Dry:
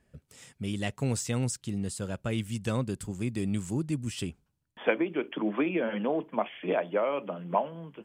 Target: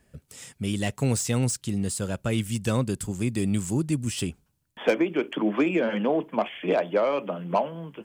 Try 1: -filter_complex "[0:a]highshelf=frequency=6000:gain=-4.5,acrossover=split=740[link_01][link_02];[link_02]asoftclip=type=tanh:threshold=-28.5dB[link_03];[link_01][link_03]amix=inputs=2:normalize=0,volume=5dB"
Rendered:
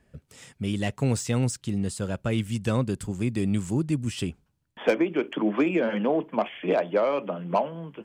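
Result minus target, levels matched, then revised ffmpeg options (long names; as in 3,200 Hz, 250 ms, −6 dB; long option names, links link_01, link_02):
8,000 Hz band −5.5 dB
-filter_complex "[0:a]highshelf=frequency=6000:gain=7,acrossover=split=740[link_01][link_02];[link_02]asoftclip=type=tanh:threshold=-28.5dB[link_03];[link_01][link_03]amix=inputs=2:normalize=0,volume=5dB"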